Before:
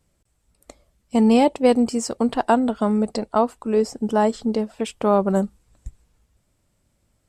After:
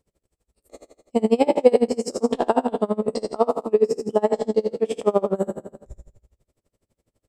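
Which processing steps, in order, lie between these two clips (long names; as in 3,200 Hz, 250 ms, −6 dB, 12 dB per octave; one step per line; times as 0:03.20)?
peak hold with a decay on every bin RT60 1.02 s
parametric band 440 Hz +10.5 dB 1.1 octaves
notch filter 1,500 Hz, Q 11
tremolo with a sine in dB 12 Hz, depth 28 dB
level −3.5 dB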